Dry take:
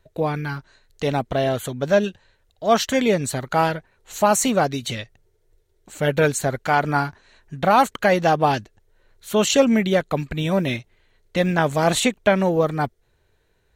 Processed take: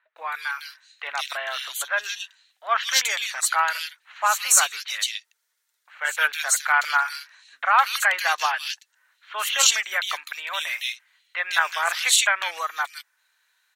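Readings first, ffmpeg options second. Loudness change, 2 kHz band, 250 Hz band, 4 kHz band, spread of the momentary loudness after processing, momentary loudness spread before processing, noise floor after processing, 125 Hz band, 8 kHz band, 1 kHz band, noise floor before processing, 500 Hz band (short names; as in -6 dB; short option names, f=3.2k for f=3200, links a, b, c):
-1.5 dB, +4.5 dB, under -40 dB, +5.0 dB, 16 LU, 11 LU, -74 dBFS, under -40 dB, +6.5 dB, -2.5 dB, -65 dBFS, -18.5 dB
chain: -filter_complex "[0:a]highpass=f=1.2k:w=0.5412,highpass=f=1.2k:w=1.3066,acrossover=split=2500[a][b];[b]adelay=160[c];[a][c]amix=inputs=2:normalize=0,volume=6.5dB"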